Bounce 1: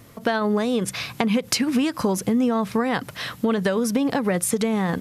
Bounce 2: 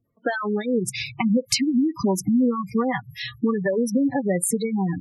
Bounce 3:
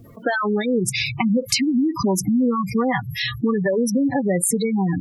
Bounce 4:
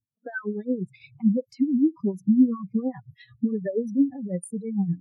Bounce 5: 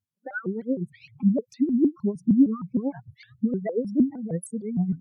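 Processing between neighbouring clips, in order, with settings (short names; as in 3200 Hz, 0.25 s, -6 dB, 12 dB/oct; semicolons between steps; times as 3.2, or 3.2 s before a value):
spectral noise reduction 26 dB; spectral gate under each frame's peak -15 dB strong; gain +1.5 dB
fast leveller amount 50%
tremolo triangle 8.8 Hz, depth 65%; spectral expander 2.5:1
shaped vibrato saw up 6.5 Hz, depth 250 cents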